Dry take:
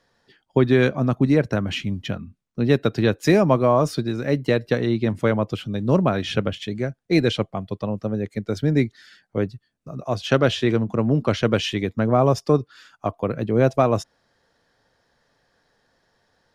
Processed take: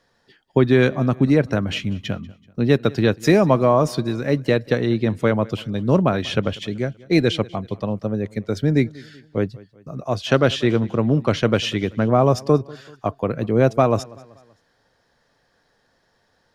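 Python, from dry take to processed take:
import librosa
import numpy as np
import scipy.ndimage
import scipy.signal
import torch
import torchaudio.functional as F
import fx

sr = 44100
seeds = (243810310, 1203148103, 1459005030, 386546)

y = fx.echo_feedback(x, sr, ms=191, feedback_pct=46, wet_db=-22.5)
y = y * 10.0 ** (1.5 / 20.0)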